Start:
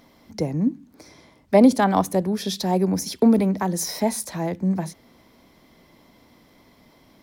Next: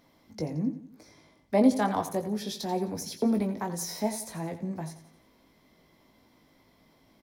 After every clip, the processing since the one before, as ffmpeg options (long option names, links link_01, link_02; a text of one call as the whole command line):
ffmpeg -i in.wav -filter_complex "[0:a]asplit=2[link_01][link_02];[link_02]adelay=19,volume=-6dB[link_03];[link_01][link_03]amix=inputs=2:normalize=0,asplit=2[link_04][link_05];[link_05]aecho=0:1:87|174|261|348:0.237|0.107|0.048|0.0216[link_06];[link_04][link_06]amix=inputs=2:normalize=0,volume=-9dB" out.wav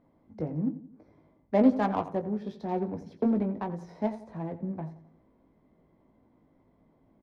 ffmpeg -i in.wav -af "adynamicsmooth=sensitivity=1.5:basefreq=1000" out.wav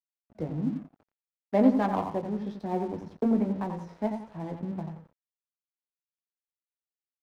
ffmpeg -i in.wav -filter_complex "[0:a]asplit=2[link_01][link_02];[link_02]adelay=88,lowpass=frequency=1400:poles=1,volume=-6dB,asplit=2[link_03][link_04];[link_04]adelay=88,lowpass=frequency=1400:poles=1,volume=0.4,asplit=2[link_05][link_06];[link_06]adelay=88,lowpass=frequency=1400:poles=1,volume=0.4,asplit=2[link_07][link_08];[link_08]adelay=88,lowpass=frequency=1400:poles=1,volume=0.4,asplit=2[link_09][link_10];[link_10]adelay=88,lowpass=frequency=1400:poles=1,volume=0.4[link_11];[link_01][link_03][link_05][link_07][link_09][link_11]amix=inputs=6:normalize=0,aeval=exprs='sgn(val(0))*max(abs(val(0))-0.00299,0)':channel_layout=same" out.wav